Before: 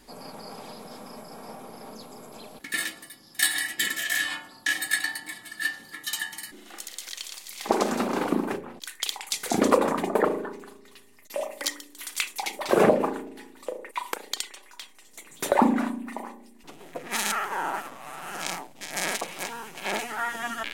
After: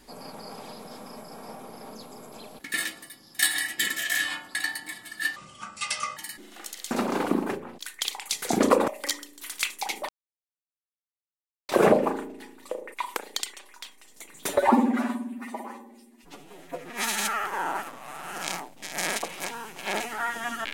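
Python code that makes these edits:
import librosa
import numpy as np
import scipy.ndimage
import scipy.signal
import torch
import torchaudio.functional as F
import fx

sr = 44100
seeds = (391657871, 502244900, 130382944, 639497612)

y = fx.edit(x, sr, fx.cut(start_s=4.55, length_s=0.4),
    fx.speed_span(start_s=5.76, length_s=0.55, speed=0.68),
    fx.cut(start_s=7.05, length_s=0.87),
    fx.cut(start_s=9.89, length_s=1.56),
    fx.insert_silence(at_s=12.66, length_s=1.6),
    fx.stretch_span(start_s=15.46, length_s=1.97, factor=1.5), tone=tone)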